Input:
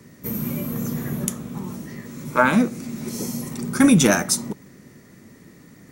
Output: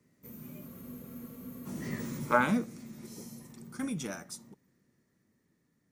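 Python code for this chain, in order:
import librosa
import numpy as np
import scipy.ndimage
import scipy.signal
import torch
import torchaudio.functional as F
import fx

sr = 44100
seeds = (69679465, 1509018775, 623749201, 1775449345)

y = fx.doppler_pass(x, sr, speed_mps=10, closest_m=1.6, pass_at_s=1.98)
y = fx.spec_freeze(y, sr, seeds[0], at_s=0.69, hold_s=0.97)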